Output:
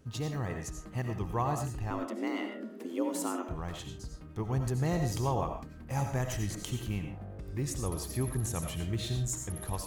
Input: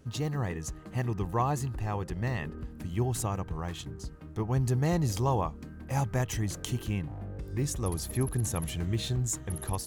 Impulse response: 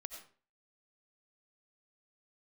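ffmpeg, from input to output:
-filter_complex "[0:a]asettb=1/sr,asplit=3[a][b][c];[a]atrim=end=1.904[d];[b]atrim=start=1.9:end=3.49,asetpts=PTS-STARTPTS,afade=t=in:d=0.004:c=qsin,afade=t=out:st=1.586:d=0.004:c=qsin,afreqshift=170[e];[c]atrim=start=3.486[f];[d][e]acrossfade=d=0.004:c1=hsin:c2=qsin[g];[g][f]acrossfade=d=0.004:c1=qsin:c2=hsin[h];[1:a]atrim=start_sample=2205,afade=t=out:st=0.22:d=0.01,atrim=end_sample=10143[i];[h][i]afir=irnorm=-1:irlink=0,volume=1.5dB"

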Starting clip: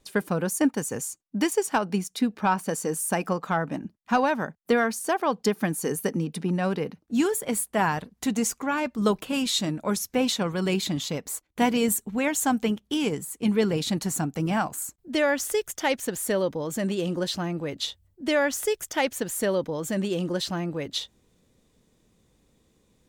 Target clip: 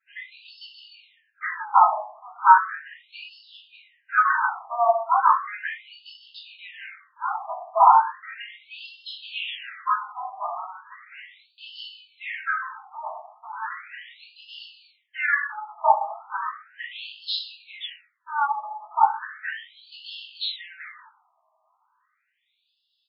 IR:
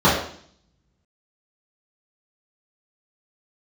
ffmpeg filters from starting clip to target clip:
-filter_complex "[0:a]asettb=1/sr,asplit=3[a][b][c];[a]atrim=end=10.004[d];[b]atrim=start=10:end=12.3,asetpts=PTS-STARTPTS,afade=t=in:d=0.004:c=qsin,afade=t=out:st=2.296:d=0.004:c=qsin,acompressor=threshold=-27dB:ratio=3[e];[c]atrim=start=12.296[f];[d][e]acrossfade=d=0.004:c1=hsin:c2=qsin[g];[g][f]acrossfade=d=0.004:c1=qsin:c2=hsin,asplit=2[h][i];[i]adelay=19,volume=-6dB[j];[h][j]amix=inputs=2:normalize=0[k];[1:a]atrim=start_sample=2205,asetrate=48510,aresample=44100[l];[k][l]afir=irnorm=-1:irlink=0,afftfilt=real='re*between(b*sr/1024,870*pow(3800/870,0.5+0.5*sin(2*PI*0.36*pts/sr))/1.41,870*pow(3800/870,0.5+0.5*sin(2*PI*0.36*pts/sr))*1.41)':imag='im*between(b*sr/1024,870*pow(3800/870,0.5+0.5*sin(2*PI*0.36*pts/sr))/1.41,870*pow(3800/870,0.5+0.5*sin(2*PI*0.36*pts/sr))*1.41)':win_size=1024:overlap=0.75,volume=-14dB"

